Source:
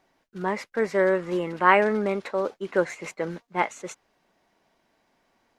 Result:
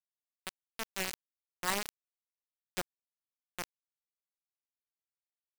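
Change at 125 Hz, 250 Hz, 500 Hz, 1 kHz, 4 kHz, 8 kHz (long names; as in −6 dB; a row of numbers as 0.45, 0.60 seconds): −17.0, −20.5, −24.0, −18.5, −0.5, +2.0 decibels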